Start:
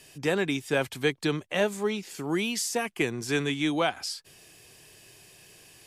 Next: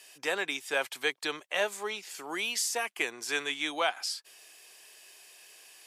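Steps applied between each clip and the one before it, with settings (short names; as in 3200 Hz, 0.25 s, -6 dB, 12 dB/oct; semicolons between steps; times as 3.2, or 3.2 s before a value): HPF 670 Hz 12 dB/oct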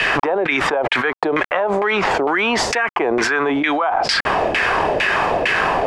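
bit-crush 9-bit; LFO low-pass saw down 2.2 Hz 530–2200 Hz; fast leveller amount 100%; gain +4.5 dB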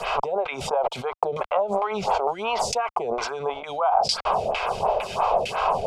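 fixed phaser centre 740 Hz, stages 4; photocell phaser 2.9 Hz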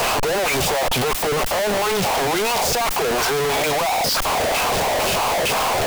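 infinite clipping; gain +5 dB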